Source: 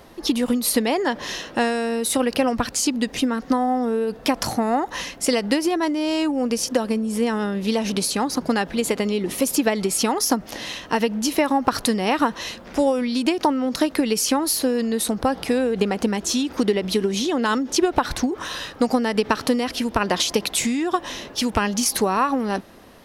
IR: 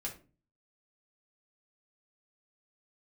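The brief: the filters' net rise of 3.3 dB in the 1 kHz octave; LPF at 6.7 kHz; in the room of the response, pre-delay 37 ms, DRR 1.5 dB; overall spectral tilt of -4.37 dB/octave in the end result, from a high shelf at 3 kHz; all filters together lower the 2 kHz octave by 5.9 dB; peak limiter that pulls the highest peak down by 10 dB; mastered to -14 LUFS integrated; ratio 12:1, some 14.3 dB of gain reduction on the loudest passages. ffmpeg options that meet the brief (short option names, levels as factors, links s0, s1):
-filter_complex "[0:a]lowpass=6700,equalizer=f=1000:t=o:g=6.5,equalizer=f=2000:t=o:g=-9,highshelf=f=3000:g=-3.5,acompressor=threshold=0.0501:ratio=12,alimiter=limit=0.075:level=0:latency=1,asplit=2[s0][s1];[1:a]atrim=start_sample=2205,adelay=37[s2];[s1][s2]afir=irnorm=-1:irlink=0,volume=0.841[s3];[s0][s3]amix=inputs=2:normalize=0,volume=5.96"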